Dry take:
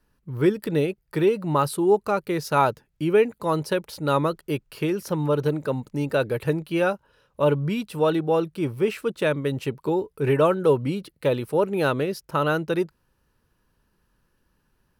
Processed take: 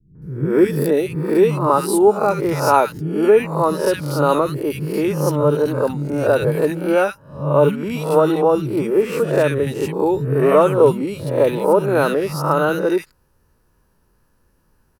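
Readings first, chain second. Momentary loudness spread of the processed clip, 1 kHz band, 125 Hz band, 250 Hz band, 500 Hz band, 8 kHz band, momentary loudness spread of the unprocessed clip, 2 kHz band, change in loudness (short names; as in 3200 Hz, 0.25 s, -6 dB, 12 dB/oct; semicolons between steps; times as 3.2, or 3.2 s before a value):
7 LU, +6.5 dB, +5.5 dB, +6.0 dB, +7.0 dB, +8.5 dB, 7 LU, +4.5 dB, +6.5 dB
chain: spectral swells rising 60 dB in 0.51 s; bell 3300 Hz -8 dB 1 oct; notches 60/120 Hz; three bands offset in time lows, mids, highs 0.15/0.22 s, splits 220/1700 Hz; gain +6.5 dB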